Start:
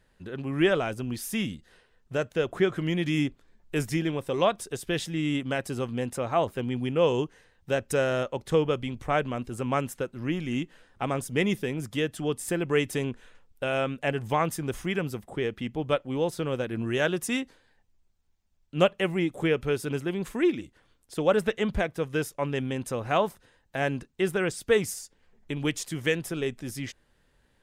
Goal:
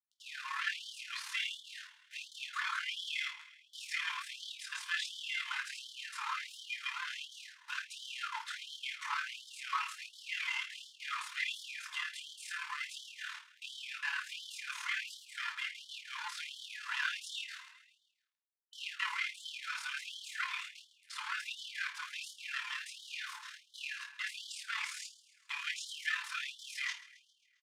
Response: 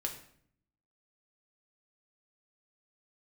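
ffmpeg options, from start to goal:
-filter_complex "[0:a]aemphasis=mode=production:type=bsi,asoftclip=type=hard:threshold=-24dB,asplit=2[link_01][link_02];[link_02]highpass=frequency=720:poles=1,volume=25dB,asoftclip=type=tanh:threshold=-23dB[link_03];[link_01][link_03]amix=inputs=2:normalize=0,lowpass=frequency=2200:poles=1,volume=-6dB,asettb=1/sr,asplit=3[link_04][link_05][link_06];[link_04]atrim=end=11.644[link_07];[link_05]atrim=start=11.64:end=13.91,asetpts=PTS-STARTPTS,afade=type=in:duration=0.004:curve=qsin,afade=type=out:start_time=2.266:duration=0.004:curve=qsin,acompressor=threshold=-29dB:ratio=20[link_08];[link_06]atrim=start=13.906[link_09];[link_07][link_08]acrossfade=duration=0.004:curve1=hsin:curve2=qsin[link_10];[link_10][link_09]acrossfade=duration=0.004:curve1=qsin:curve2=hsin,acrusher=bits=6:mix=0:aa=0.000001,lowpass=5400[link_11];[1:a]atrim=start_sample=2205,afade=type=out:start_time=0.15:duration=0.01,atrim=end_sample=7056,asetrate=52920,aresample=44100[link_12];[link_11][link_12]afir=irnorm=-1:irlink=0,tremolo=f=37:d=0.519,aecho=1:1:134|268|402|536|670:0.126|0.0743|0.0438|0.0259|0.0153,afftfilt=real='re*gte(b*sr/1024,830*pow(3000/830,0.5+0.5*sin(2*PI*1.4*pts/sr)))':imag='im*gte(b*sr/1024,830*pow(3000/830,0.5+0.5*sin(2*PI*1.4*pts/sr)))':win_size=1024:overlap=0.75,volume=1dB"

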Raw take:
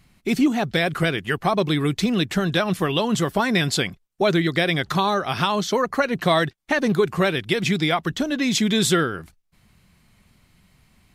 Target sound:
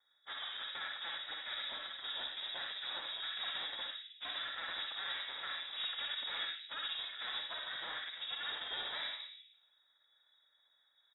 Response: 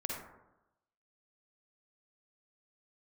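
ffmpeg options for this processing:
-filter_complex "[0:a]lowshelf=frequency=170:gain=4.5,aecho=1:1:3.5:0.5,aeval=exprs='abs(val(0))':channel_layout=same,asplit=3[link_01][link_02][link_03];[link_01]bandpass=frequency=270:width_type=q:width=8,volume=0dB[link_04];[link_02]bandpass=frequency=2290:width_type=q:width=8,volume=-6dB[link_05];[link_03]bandpass=frequency=3010:width_type=q:width=8,volume=-9dB[link_06];[link_04][link_05][link_06]amix=inputs=3:normalize=0,aeval=exprs='val(0)*sin(2*PI*170*n/s)':channel_layout=same,asplit=2[link_07][link_08];[link_08]acrusher=bits=5:mix=0:aa=0.000001,volume=-8dB[link_09];[link_07][link_09]amix=inputs=2:normalize=0,afreqshift=49,asoftclip=type=hard:threshold=-36dB[link_10];[1:a]atrim=start_sample=2205,asetrate=43659,aresample=44100[link_11];[link_10][link_11]afir=irnorm=-1:irlink=0,lowpass=frequency=3300:width_type=q:width=0.5098,lowpass=frequency=3300:width_type=q:width=0.6013,lowpass=frequency=3300:width_type=q:width=0.9,lowpass=frequency=3300:width_type=q:width=2.563,afreqshift=-3900,volume=-1.5dB"

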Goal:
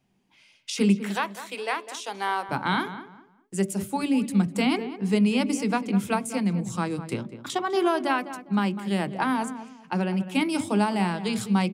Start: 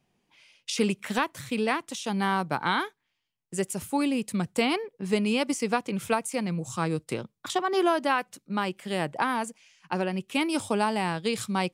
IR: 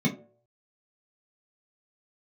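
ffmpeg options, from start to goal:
-filter_complex "[0:a]asettb=1/sr,asplit=3[link_01][link_02][link_03];[link_01]atrim=end=1.024[link_04];[link_02]atrim=start=1.02:end=2.49,asetpts=PTS-STARTPTS,afade=type=in:duration=0.004:curve=qsin,afade=type=out:start_time=1.466:duration=0.004:curve=qsin,highpass=frequency=420:width=0.5412,highpass=frequency=420:width=1.3066[link_05];[link_03]atrim=start=2.486[link_06];[link_04][link_05]acrossfade=duration=0.004:curve1=hsin:curve2=qsin[link_07];[link_07][link_06]acrossfade=duration=0.004:curve1=qsin:curve2=hsin,asplit=2[link_08][link_09];[link_09]adelay=202,lowpass=frequency=1900:poles=1,volume=-12dB,asplit=2[link_10][link_11];[link_11]adelay=202,lowpass=frequency=1900:poles=1,volume=0.28,asplit=2[link_12][link_13];[link_13]adelay=202,lowpass=frequency=1900:poles=1,volume=0.28[link_14];[link_08][link_10][link_12][link_14]amix=inputs=4:normalize=0,asplit=2[link_15][link_16];[1:a]atrim=start_sample=2205[link_17];[link_16][link_17]afir=irnorm=-1:irlink=0,volume=-21.5dB[link_18];[link_15][link_18]amix=inputs=2:normalize=0"

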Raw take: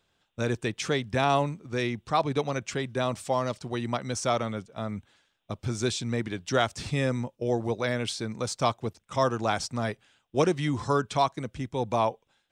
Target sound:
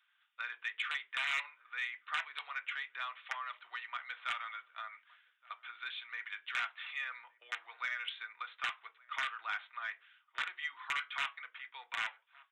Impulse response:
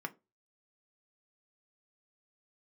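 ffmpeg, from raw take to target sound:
-filter_complex "[0:a]aresample=8000,aeval=exprs='(mod(5.96*val(0)+1,2)-1)/5.96':channel_layout=same,aresample=44100,asplit=2[link_01][link_02];[link_02]adelay=1166,volume=-28dB,highshelf=frequency=4000:gain=-26.2[link_03];[link_01][link_03]amix=inputs=2:normalize=0[link_04];[1:a]atrim=start_sample=2205,afade=type=out:start_time=0.23:duration=0.01,atrim=end_sample=10584[link_05];[link_04][link_05]afir=irnorm=-1:irlink=0,acompressor=threshold=-30dB:ratio=3,highpass=frequency=1400:width=0.5412,highpass=frequency=1400:width=1.3066,asoftclip=type=tanh:threshold=-26.5dB,volume=2.5dB"

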